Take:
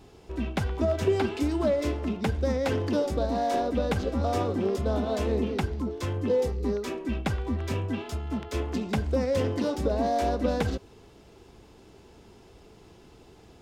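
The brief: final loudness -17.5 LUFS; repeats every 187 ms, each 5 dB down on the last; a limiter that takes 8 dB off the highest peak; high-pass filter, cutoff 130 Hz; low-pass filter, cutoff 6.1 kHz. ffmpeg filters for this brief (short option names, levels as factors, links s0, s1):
-af "highpass=130,lowpass=6100,alimiter=limit=0.1:level=0:latency=1,aecho=1:1:187|374|561|748|935|1122|1309:0.562|0.315|0.176|0.0988|0.0553|0.031|0.0173,volume=3.76"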